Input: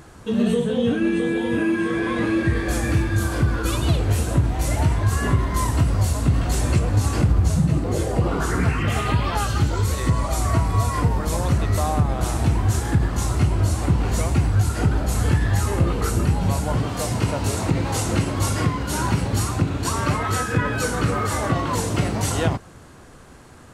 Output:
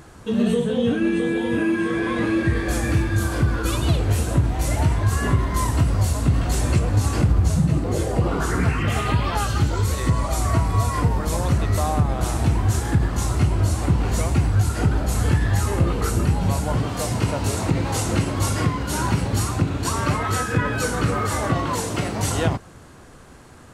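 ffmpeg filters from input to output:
-filter_complex "[0:a]asettb=1/sr,asplit=3[a][b][c];[a]atrim=end=21.734[d];[b]atrim=start=21.73:end=22.19,asetpts=PTS-STARTPTS,afade=t=in:d=0.004:c=qsin,afade=t=out:st=0.456:d=0.004:c=qsin,lowshelf=f=180:g=-7[e];[c]atrim=start=22.186[f];[d][e]acrossfade=d=0.004:c1=hsin:c2=qsin[g];[g][f]acrossfade=d=0.004:c1=qsin:c2=hsin"

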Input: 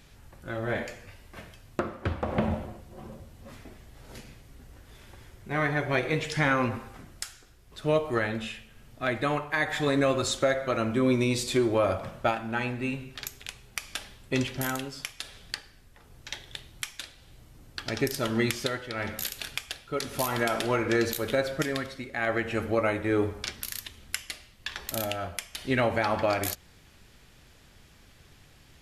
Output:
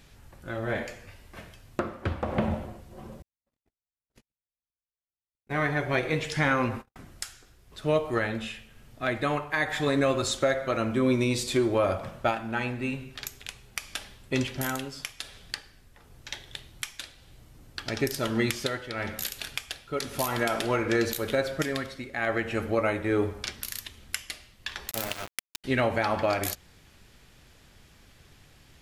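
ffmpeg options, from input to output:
-filter_complex "[0:a]asettb=1/sr,asplit=3[a][b][c];[a]atrim=end=3.224[d];[b]atrim=start=3.22:end=6.96,asetpts=PTS-STARTPTS,afade=t=in:d=0.004:c=qsin,afade=t=out:st=3.736:d=0.004:c=qsin,agate=range=-59dB:threshold=-41dB:ratio=16:release=100:detection=peak[e];[c]atrim=start=6.956[f];[d][e]acrossfade=d=0.004:c1=hsin:c2=qsin[g];[g][f]acrossfade=d=0.004:c1=qsin:c2=hsin,asettb=1/sr,asplit=3[h][i][j];[h]atrim=end=24.914[k];[i]atrim=start=24.91:end=25.64,asetpts=PTS-STARTPTS,afade=t=in:d=0.004:c=qsin,afade=t=out:st=0.726:d=0.004:c=qsin,aeval=exprs='val(0)*gte(abs(val(0)),0.0355)':c=same[l];[j]atrim=start=25.636[m];[k][l]acrossfade=d=0.004:c1=hsin:c2=qsin[n];[n][m]acrossfade=d=0.004:c1=qsin:c2=hsin"

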